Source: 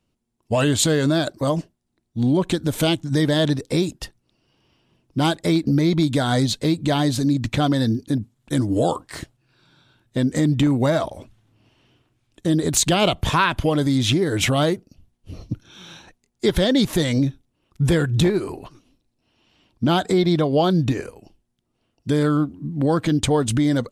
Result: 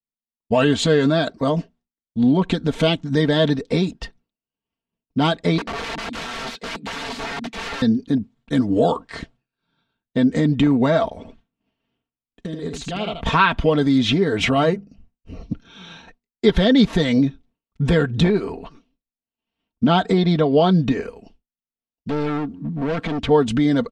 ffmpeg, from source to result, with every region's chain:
ffmpeg -i in.wav -filter_complex "[0:a]asettb=1/sr,asplit=3[link_01][link_02][link_03];[link_01]atrim=end=5.584[link_04];[link_02]atrim=start=5.58:end=7.82,asetpts=PTS-STARTPTS,afade=type=in:duration=0.004:curve=qsin,afade=type=out:start_time=2.236:duration=0.004:curve=qsin,highpass=frequency=190:width=0.5412,highpass=frequency=190:width=1.3066,flanger=delay=18.5:depth=3.3:speed=1.4,aeval=exprs='(mod(17.8*val(0)+1,2)-1)/17.8':channel_layout=same[link_05];[link_03]atrim=start=7.816[link_06];[link_04][link_05]acrossfade=duration=0.004:curve1=hsin:curve2=qsin[link_07];[link_07][link_06]acrossfade=duration=0.004:curve1=qsin:curve2=hsin,asettb=1/sr,asplit=3[link_08][link_09][link_10];[link_08]atrim=end=11.174[link_11];[link_09]atrim=start=11.17:end=13.26,asetpts=PTS-STARTPTS,afade=type=in:duration=0.004:curve=qsin,afade=type=out:start_time=2.086:duration=0.004:curve=qsin,acompressor=threshold=-28dB:ratio=4:attack=3.2:release=140:knee=1:detection=peak,aecho=1:1:79:0.501,atrim=end_sample=92169[link_12];[link_10]atrim=start=13.256[link_13];[link_11][link_12]acrossfade=duration=0.004:curve1=hsin:curve2=qsin[link_14];[link_14][link_13]acrossfade=duration=0.004:curve1=qsin:curve2=hsin,asettb=1/sr,asplit=3[link_15][link_16][link_17];[link_15]atrim=end=14.494[link_18];[link_16]atrim=start=14.49:end=15.43,asetpts=PTS-STARTPTS,afade=type=in:duration=0.004:curve=qsin,afade=type=out:start_time=0.936:duration=0.004:curve=qsin,asuperstop=centerf=3400:order=4:qfactor=6.4,equalizer=frequency=4300:width_type=o:width=0.2:gain=-8,bandreject=frequency=50:width_type=h:width=6,bandreject=frequency=100:width_type=h:width=6,bandreject=frequency=150:width_type=h:width=6,bandreject=frequency=200:width_type=h:width=6[link_19];[link_17]atrim=start=15.426[link_20];[link_18][link_19]acrossfade=duration=0.004:curve1=hsin:curve2=qsin[link_21];[link_21][link_20]acrossfade=duration=0.004:curve1=qsin:curve2=hsin,asettb=1/sr,asplit=3[link_22][link_23][link_24];[link_22]atrim=end=21.034[link_25];[link_23]atrim=start=21.03:end=23.29,asetpts=PTS-STARTPTS,afade=type=in:duration=0.004:curve=qsin,afade=type=out:start_time=2.256:duration=0.004:curve=qsin,acrossover=split=4600[link_26][link_27];[link_27]acompressor=threshold=-52dB:ratio=4:attack=1:release=60[link_28];[link_26][link_28]amix=inputs=2:normalize=0,highshelf=frequency=5500:gain=7,volume=23dB,asoftclip=hard,volume=-23dB[link_29];[link_24]atrim=start=23.286[link_30];[link_25][link_29]acrossfade=duration=0.004:curve1=hsin:curve2=qsin[link_31];[link_31][link_30]acrossfade=duration=0.004:curve1=qsin:curve2=hsin,lowpass=3800,aecho=1:1:4.4:0.59,agate=range=-33dB:threshold=-46dB:ratio=3:detection=peak,volume=1.5dB" out.wav

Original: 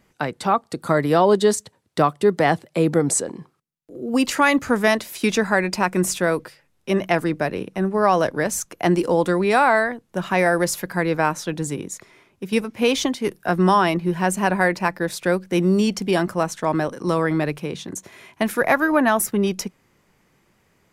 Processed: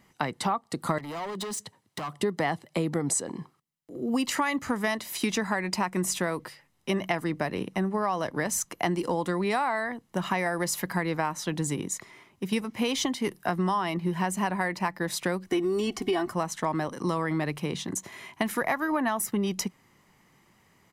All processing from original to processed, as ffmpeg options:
ffmpeg -i in.wav -filter_complex "[0:a]asettb=1/sr,asplit=3[link_01][link_02][link_03];[link_01]atrim=end=0.984[link_04];[link_02]atrim=start=0.98:end=2.2,asetpts=PTS-STARTPTS,afade=type=in:duration=0.004:curve=qsin,afade=type=out:start_time=1.216:duration=0.004:curve=qsin,highpass=frequency=94:width=0.5412,highpass=frequency=94:width=1.3066,acompressor=threshold=-24dB:ratio=8:attack=3.2:release=140:knee=1:detection=peak,asoftclip=type=hard:threshold=-30.5dB[link_05];[link_03]atrim=start=2.196[link_06];[link_04][link_05]acrossfade=duration=0.004:curve1=hsin:curve2=qsin[link_07];[link_07][link_06]acrossfade=duration=0.004:curve1=qsin:curve2=hsin,asettb=1/sr,asplit=3[link_08][link_09][link_10];[link_08]atrim=end=15.464[link_11];[link_09]atrim=start=15.46:end=16.33,asetpts=PTS-STARTPTS,afade=type=in:duration=0.004:curve=qsin,afade=type=out:start_time=0.866:duration=0.004:curve=qsin,aecho=1:1:2.7:0.79,atrim=end_sample=38367,acrossover=split=2700[link_12][link_13];[link_13]acompressor=threshold=-34dB:ratio=4:attack=1:release=60[link_14];[link_12][link_14]amix=inputs=2:normalize=0[link_15];[link_10]atrim=start=16.326[link_16];[link_11][link_15]acrossfade=duration=0.004:curve1=hsin:curve2=qsin[link_17];[link_17][link_16]acrossfade=duration=0.004:curve1=qsin:curve2=hsin,lowshelf=frequency=78:gain=-10,aecho=1:1:1:0.37,acompressor=threshold=-24dB:ratio=6" out.wav

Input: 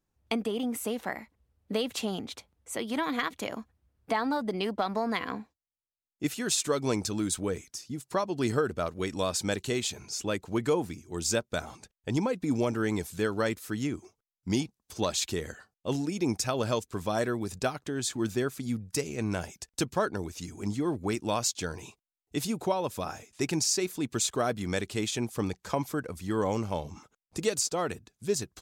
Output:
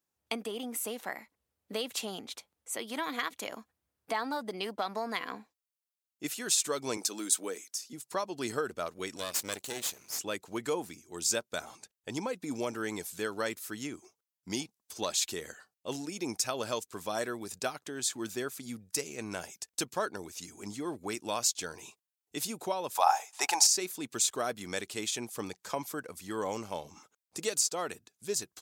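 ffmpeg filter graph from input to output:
ffmpeg -i in.wav -filter_complex "[0:a]asettb=1/sr,asplit=3[link_01][link_02][link_03];[link_01]atrim=end=6.974[link_04];[link_02]atrim=start=6.97:end=7.93,asetpts=PTS-STARTPTS,afade=type=in:duration=0.004:curve=qsin,afade=type=out:start_time=0.956:duration=0.004:curve=qsin,highpass=frequency=230:width=0.5412,highpass=frequency=230:width=1.3066,highshelf=frequency=6000:gain=4.5[link_05];[link_03]atrim=start=7.926[link_06];[link_04][link_05]acrossfade=duration=0.004:curve1=hsin:curve2=qsin[link_07];[link_07][link_06]acrossfade=duration=0.004:curve1=qsin:curve2=hsin,asettb=1/sr,asplit=3[link_08][link_09][link_10];[link_08]atrim=end=9.164[link_11];[link_09]atrim=start=9.16:end=10.19,asetpts=PTS-STARTPTS,afade=type=in:duration=0.004:curve=qsin,afade=type=out:start_time=1.026:duration=0.004:curve=qsin,asuperstop=centerf=830:order=4:qfactor=3.4,highshelf=frequency=6000:gain=5.5,aeval=exprs='max(val(0),0)':channel_layout=same[link_12];[link_10]atrim=start=10.186[link_13];[link_11][link_12]acrossfade=duration=0.004:curve1=hsin:curve2=qsin[link_14];[link_14][link_13]acrossfade=duration=0.004:curve1=qsin:curve2=hsin,asettb=1/sr,asplit=3[link_15][link_16][link_17];[link_15]atrim=end=22.954[link_18];[link_16]atrim=start=22.95:end=23.67,asetpts=PTS-STARTPTS,afade=type=in:duration=0.004:curve=qsin,afade=type=out:start_time=0.716:duration=0.004:curve=qsin,acontrast=63,highpass=frequency=820:width_type=q:width=7.5[link_19];[link_17]atrim=start=23.666[link_20];[link_18][link_19]acrossfade=duration=0.004:curve1=hsin:curve2=qsin[link_21];[link_21][link_20]acrossfade=duration=0.004:curve1=qsin:curve2=hsin,highpass=frequency=430:poles=1,highshelf=frequency=5700:gain=7,volume=-3dB" out.wav

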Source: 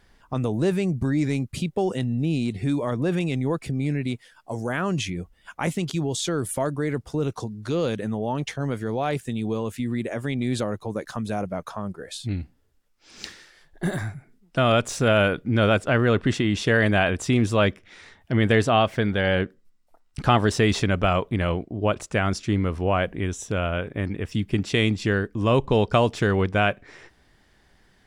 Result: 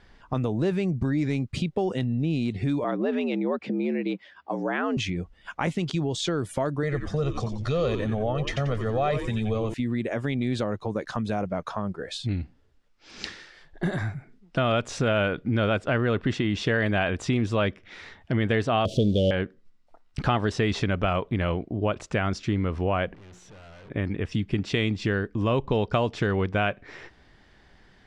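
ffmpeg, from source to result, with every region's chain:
ffmpeg -i in.wav -filter_complex "[0:a]asettb=1/sr,asplit=3[link_01][link_02][link_03];[link_01]atrim=end=2.844[link_04];[link_02]atrim=start=2.84:end=4.97,asetpts=PTS-STARTPTS,afade=type=in:duration=0.004:curve=qsin,afade=type=out:start_time=2.126:duration=0.004:curve=qsin,afreqshift=73,highpass=180,lowpass=3700[link_05];[link_03]atrim=start=4.966[link_06];[link_04][link_05]acrossfade=duration=0.004:curve1=hsin:curve2=qsin[link_07];[link_07][link_06]acrossfade=duration=0.004:curve1=qsin:curve2=hsin,asettb=1/sr,asplit=3[link_08][link_09][link_10];[link_08]atrim=end=6.834[link_11];[link_09]atrim=start=6.83:end=9.74,asetpts=PTS-STARTPTS,afade=type=in:duration=0.004:curve=qsin,afade=type=out:start_time=2.906:duration=0.004:curve=qsin,aecho=1:1:1.6:0.82,atrim=end_sample=128331,asplit=6[link_12][link_13][link_14][link_15][link_16][link_17];[link_13]adelay=90,afreqshift=-120,volume=-8dB[link_18];[link_14]adelay=180,afreqshift=-240,volume=-16dB[link_19];[link_15]adelay=270,afreqshift=-360,volume=-23.9dB[link_20];[link_16]adelay=360,afreqshift=-480,volume=-31.9dB[link_21];[link_17]adelay=450,afreqshift=-600,volume=-39.8dB[link_22];[link_12][link_18][link_19][link_20][link_21][link_22]amix=inputs=6:normalize=0,atrim=end_sample=128331[link_23];[link_10]atrim=start=9.736[link_24];[link_11][link_23]acrossfade=duration=0.004:curve1=hsin:curve2=qsin[link_25];[link_25][link_24]acrossfade=duration=0.004:curve1=qsin:curve2=hsin,asettb=1/sr,asplit=3[link_26][link_27][link_28];[link_26]atrim=end=18.854[link_29];[link_27]atrim=start=18.85:end=19.31,asetpts=PTS-STARTPTS,afade=type=in:duration=0.004:curve=qsin,afade=type=out:start_time=0.456:duration=0.004:curve=qsin,aeval=exprs='val(0)+0.5*0.0168*sgn(val(0))':channel_layout=same,acontrast=87,asuperstop=centerf=1400:order=12:qfactor=0.57[link_30];[link_28]atrim=start=19.306[link_31];[link_29][link_30]acrossfade=duration=0.004:curve1=hsin:curve2=qsin[link_32];[link_32][link_31]acrossfade=duration=0.004:curve1=qsin:curve2=hsin,asettb=1/sr,asplit=3[link_33][link_34][link_35];[link_33]atrim=end=23.144[link_36];[link_34]atrim=start=23.14:end=23.9,asetpts=PTS-STARTPTS,afade=type=in:duration=0.004:curve=qsin,afade=type=out:start_time=0.756:duration=0.004:curve=qsin,bandreject=frequency=60:width_type=h:width=6,bandreject=frequency=120:width_type=h:width=6,bandreject=frequency=180:width_type=h:width=6,bandreject=frequency=240:width_type=h:width=6,bandreject=frequency=300:width_type=h:width=6,bandreject=frequency=360:width_type=h:width=6,acompressor=threshold=-31dB:ratio=6:attack=3.2:release=140:knee=1:detection=peak,aeval=exprs='(tanh(316*val(0)+0.25)-tanh(0.25))/316':channel_layout=same[link_37];[link_35]atrim=start=23.896[link_38];[link_36][link_37]acrossfade=duration=0.004:curve1=hsin:curve2=qsin[link_39];[link_39][link_38]acrossfade=duration=0.004:curve1=qsin:curve2=hsin,lowpass=5000,acompressor=threshold=-30dB:ratio=2,volume=3.5dB" out.wav

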